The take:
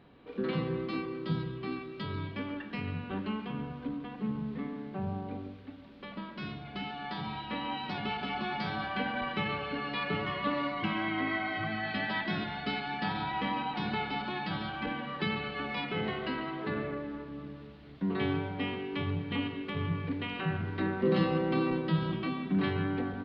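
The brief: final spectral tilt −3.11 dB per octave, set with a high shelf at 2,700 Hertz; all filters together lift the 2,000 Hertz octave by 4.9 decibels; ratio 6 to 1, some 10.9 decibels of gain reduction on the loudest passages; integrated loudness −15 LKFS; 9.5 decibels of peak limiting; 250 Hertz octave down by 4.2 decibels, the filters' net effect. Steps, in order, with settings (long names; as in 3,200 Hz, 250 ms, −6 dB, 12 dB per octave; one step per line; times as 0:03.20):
parametric band 250 Hz −6 dB
parametric band 2,000 Hz +4.5 dB
high-shelf EQ 2,700 Hz +3.5 dB
downward compressor 6 to 1, threshold −37 dBFS
level +28.5 dB
brickwall limiter −7 dBFS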